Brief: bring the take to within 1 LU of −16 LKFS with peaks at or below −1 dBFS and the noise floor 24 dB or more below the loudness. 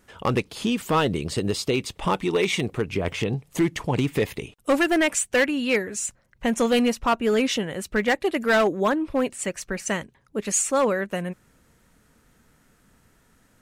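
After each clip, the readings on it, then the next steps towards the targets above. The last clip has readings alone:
share of clipped samples 1.1%; peaks flattened at −14.5 dBFS; integrated loudness −24.0 LKFS; sample peak −14.5 dBFS; target loudness −16.0 LKFS
→ clipped peaks rebuilt −14.5 dBFS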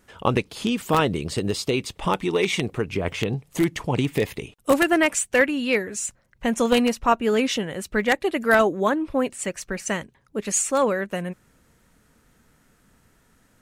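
share of clipped samples 0.0%; integrated loudness −23.5 LKFS; sample peak −5.5 dBFS; target loudness −16.0 LKFS
→ level +7.5 dB
brickwall limiter −1 dBFS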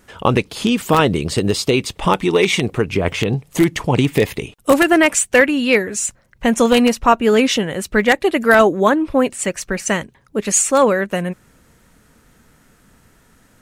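integrated loudness −16.5 LKFS; sample peak −1.0 dBFS; background noise floor −54 dBFS

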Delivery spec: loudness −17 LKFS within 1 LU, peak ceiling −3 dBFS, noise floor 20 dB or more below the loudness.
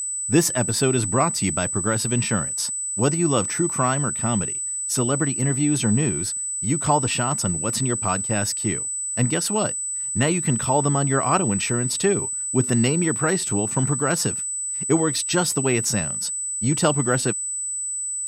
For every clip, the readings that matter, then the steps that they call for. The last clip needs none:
interfering tone 8,000 Hz; level of the tone −25 dBFS; integrated loudness −21.5 LKFS; sample peak −5.5 dBFS; target loudness −17.0 LKFS
→ notch filter 8,000 Hz, Q 30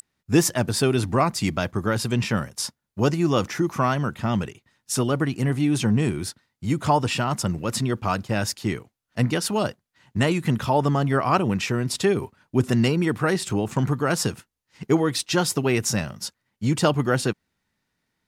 interfering tone none found; integrated loudness −23.5 LKFS; sample peak −6.5 dBFS; target loudness −17.0 LKFS
→ level +6.5 dB
brickwall limiter −3 dBFS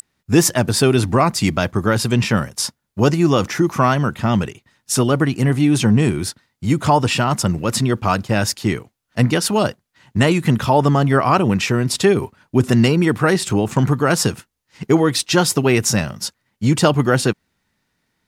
integrated loudness −17.5 LKFS; sample peak −3.0 dBFS; background noise floor −74 dBFS

